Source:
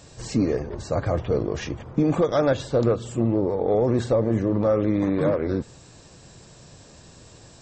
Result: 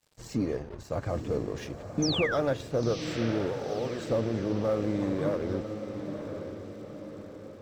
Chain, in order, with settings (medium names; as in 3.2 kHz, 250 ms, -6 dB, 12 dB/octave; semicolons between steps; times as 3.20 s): crossover distortion -43 dBFS; 2.02–2.36 s: painted sound fall 1.2–6.5 kHz -25 dBFS; 3.53–4.10 s: bass shelf 430 Hz -10.5 dB; on a send: echo that smears into a reverb 969 ms, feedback 51%, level -8 dB; on the sum: trim -7 dB